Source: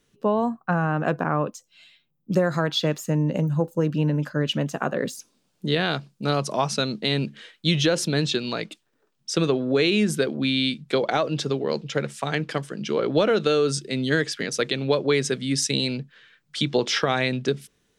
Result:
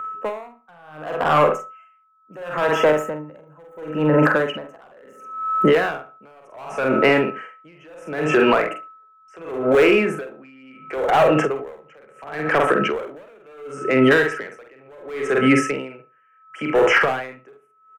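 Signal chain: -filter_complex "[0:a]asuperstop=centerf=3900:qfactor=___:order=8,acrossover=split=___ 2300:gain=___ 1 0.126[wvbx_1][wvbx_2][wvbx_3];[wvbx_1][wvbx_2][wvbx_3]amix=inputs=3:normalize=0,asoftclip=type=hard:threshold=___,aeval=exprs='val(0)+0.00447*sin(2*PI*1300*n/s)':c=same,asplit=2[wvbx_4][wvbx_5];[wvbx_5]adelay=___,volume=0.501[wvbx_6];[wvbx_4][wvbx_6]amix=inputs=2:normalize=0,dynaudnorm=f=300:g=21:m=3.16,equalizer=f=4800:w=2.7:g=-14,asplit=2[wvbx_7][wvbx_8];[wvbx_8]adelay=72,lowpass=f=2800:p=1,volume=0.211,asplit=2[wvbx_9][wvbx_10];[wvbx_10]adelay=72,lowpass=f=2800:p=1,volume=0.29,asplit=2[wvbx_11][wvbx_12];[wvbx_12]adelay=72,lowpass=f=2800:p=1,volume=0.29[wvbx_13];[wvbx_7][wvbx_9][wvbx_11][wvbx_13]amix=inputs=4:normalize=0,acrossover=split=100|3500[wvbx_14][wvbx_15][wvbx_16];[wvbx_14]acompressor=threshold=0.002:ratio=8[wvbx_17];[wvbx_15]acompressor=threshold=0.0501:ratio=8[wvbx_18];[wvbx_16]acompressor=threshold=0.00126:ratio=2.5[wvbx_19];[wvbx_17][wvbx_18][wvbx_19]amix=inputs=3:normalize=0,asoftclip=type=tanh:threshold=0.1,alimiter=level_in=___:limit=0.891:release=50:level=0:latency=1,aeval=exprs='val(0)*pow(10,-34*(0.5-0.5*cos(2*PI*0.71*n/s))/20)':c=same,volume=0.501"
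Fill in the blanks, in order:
1.9, 400, 0.1, 0.0596, 46, 20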